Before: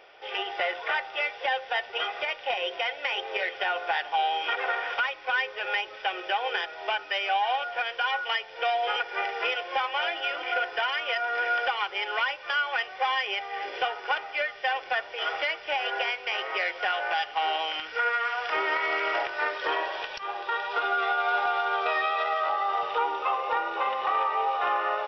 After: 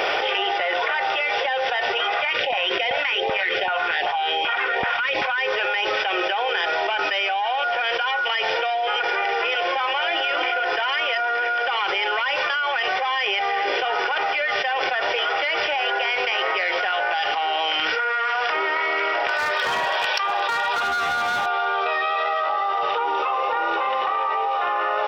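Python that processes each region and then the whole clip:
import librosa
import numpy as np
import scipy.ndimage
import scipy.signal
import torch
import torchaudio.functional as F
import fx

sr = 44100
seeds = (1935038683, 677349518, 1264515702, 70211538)

y = fx.chain(x, sr, fx.filter_lfo_notch(shape='saw_up', hz=2.6, low_hz=250.0, high_hz=1600.0, q=0.8),
    fx.high_shelf(hz=4900.0, db=-11.0), at=(2.14, 5.38))
y = fx.chain(y, sr, fx.highpass(hz=550.0, slope=12),
    fx.clip_hard(threshold_db=-27.0), at=(19.27, 21.46))
y = scipy.signal.sosfilt(scipy.signal.butter(2, 62.0, 'highpass', fs=sr, output='sos'), y)
y = fx.env_flatten(y, sr, amount_pct=100)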